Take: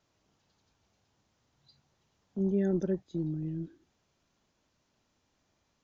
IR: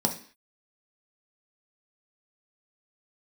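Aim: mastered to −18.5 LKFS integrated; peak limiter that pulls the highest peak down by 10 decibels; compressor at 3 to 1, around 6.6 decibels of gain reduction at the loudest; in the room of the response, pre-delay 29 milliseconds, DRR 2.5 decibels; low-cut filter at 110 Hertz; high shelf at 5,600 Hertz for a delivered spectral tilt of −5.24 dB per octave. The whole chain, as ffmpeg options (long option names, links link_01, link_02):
-filter_complex "[0:a]highpass=110,highshelf=frequency=5600:gain=-5,acompressor=threshold=-34dB:ratio=3,alimiter=level_in=13dB:limit=-24dB:level=0:latency=1,volume=-13dB,asplit=2[link_01][link_02];[1:a]atrim=start_sample=2205,adelay=29[link_03];[link_02][link_03]afir=irnorm=-1:irlink=0,volume=-11.5dB[link_04];[link_01][link_04]amix=inputs=2:normalize=0,volume=21.5dB"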